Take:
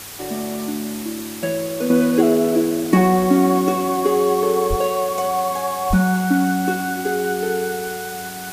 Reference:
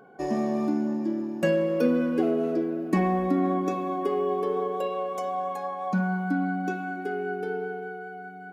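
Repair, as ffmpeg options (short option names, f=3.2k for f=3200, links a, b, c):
-filter_complex "[0:a]bandreject=f=101.3:t=h:w=4,bandreject=f=202.6:t=h:w=4,bandreject=f=303.9:t=h:w=4,asplit=3[a][b][c];[a]afade=t=out:st=4.69:d=0.02[d];[b]highpass=f=140:w=0.5412,highpass=f=140:w=1.3066,afade=t=in:st=4.69:d=0.02,afade=t=out:st=4.81:d=0.02[e];[c]afade=t=in:st=4.81:d=0.02[f];[d][e][f]amix=inputs=3:normalize=0,asplit=3[g][h][i];[g]afade=t=out:st=5.89:d=0.02[j];[h]highpass=f=140:w=0.5412,highpass=f=140:w=1.3066,afade=t=in:st=5.89:d=0.02,afade=t=out:st=6.01:d=0.02[k];[i]afade=t=in:st=6.01:d=0.02[l];[j][k][l]amix=inputs=3:normalize=0,afwtdn=0.02,asetnsamples=n=441:p=0,asendcmd='1.9 volume volume -9dB',volume=0dB"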